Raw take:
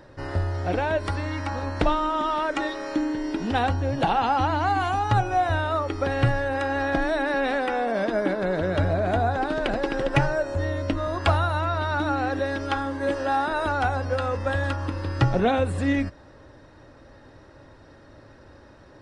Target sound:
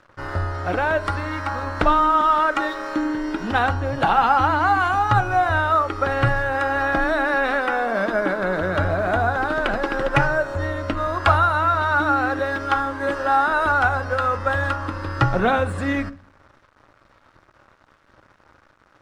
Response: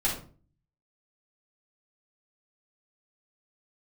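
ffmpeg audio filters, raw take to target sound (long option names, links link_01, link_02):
-filter_complex "[0:a]aeval=exprs='sgn(val(0))*max(abs(val(0))-0.00422,0)':channel_layout=same,equalizer=frequency=1300:width=1.6:gain=10.5,asplit=2[link_01][link_02];[1:a]atrim=start_sample=2205[link_03];[link_02][link_03]afir=irnorm=-1:irlink=0,volume=-21.5dB[link_04];[link_01][link_04]amix=inputs=2:normalize=0"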